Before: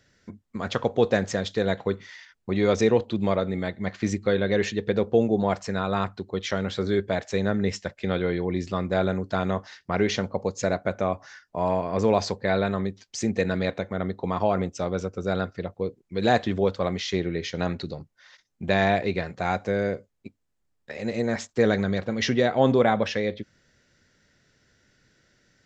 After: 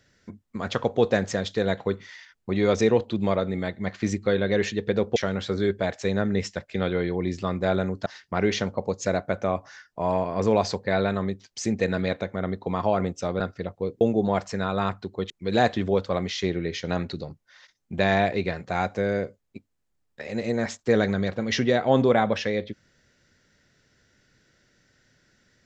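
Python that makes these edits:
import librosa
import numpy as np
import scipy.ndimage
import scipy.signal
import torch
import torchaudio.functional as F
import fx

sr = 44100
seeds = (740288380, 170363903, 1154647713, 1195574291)

y = fx.edit(x, sr, fx.move(start_s=5.16, length_s=1.29, to_s=16.0),
    fx.cut(start_s=9.35, length_s=0.28),
    fx.cut(start_s=14.97, length_s=0.42), tone=tone)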